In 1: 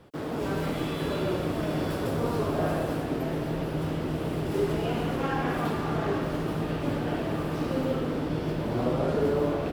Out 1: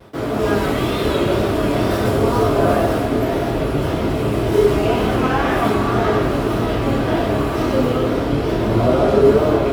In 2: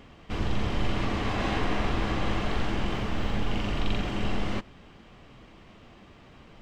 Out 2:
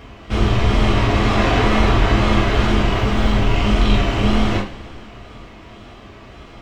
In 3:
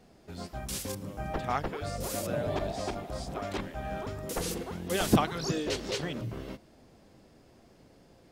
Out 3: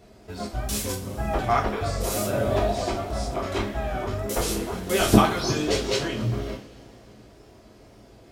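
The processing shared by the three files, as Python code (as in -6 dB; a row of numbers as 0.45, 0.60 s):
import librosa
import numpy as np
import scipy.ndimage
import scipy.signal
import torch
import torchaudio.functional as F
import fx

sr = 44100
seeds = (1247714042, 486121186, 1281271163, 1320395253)

y = fx.wow_flutter(x, sr, seeds[0], rate_hz=2.1, depth_cents=96.0)
y = fx.rev_double_slope(y, sr, seeds[1], early_s=0.32, late_s=3.0, knee_db=-22, drr_db=-2.0)
y = librosa.util.normalize(y) * 10.0 ** (-2 / 20.0)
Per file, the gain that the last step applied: +7.5, +8.0, +3.5 dB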